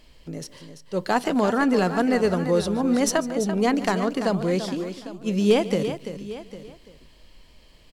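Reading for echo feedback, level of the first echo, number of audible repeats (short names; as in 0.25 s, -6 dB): no steady repeat, -17.5 dB, 5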